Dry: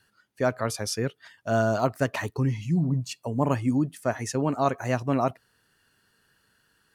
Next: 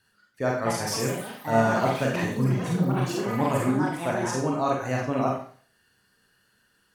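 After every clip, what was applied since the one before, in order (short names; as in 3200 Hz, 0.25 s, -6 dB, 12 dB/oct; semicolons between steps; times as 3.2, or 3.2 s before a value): echoes that change speed 0.344 s, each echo +5 st, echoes 3, each echo -6 dB; Schroeder reverb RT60 0.47 s, combs from 31 ms, DRR -2 dB; gain -3.5 dB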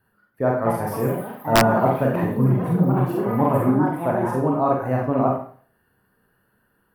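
EQ curve 1000 Hz 0 dB, 6700 Hz -28 dB, 12000 Hz -2 dB; wrapped overs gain 11 dB; gain +5.5 dB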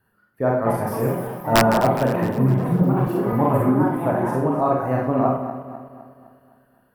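regenerating reverse delay 0.128 s, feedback 69%, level -11.5 dB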